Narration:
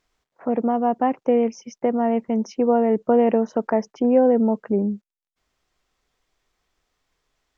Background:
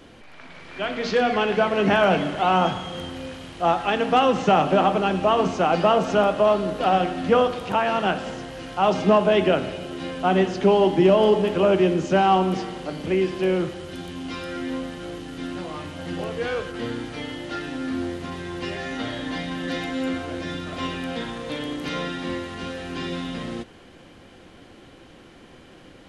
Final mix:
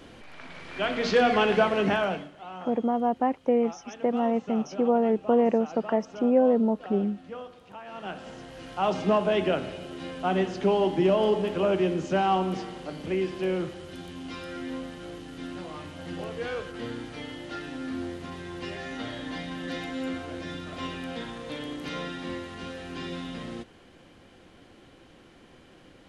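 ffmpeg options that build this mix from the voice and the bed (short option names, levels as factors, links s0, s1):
-filter_complex "[0:a]adelay=2200,volume=0.596[s0];[1:a]volume=5.62,afade=t=out:st=1.53:d=0.77:silence=0.0891251,afade=t=in:st=7.84:d=0.87:silence=0.16788[s1];[s0][s1]amix=inputs=2:normalize=0"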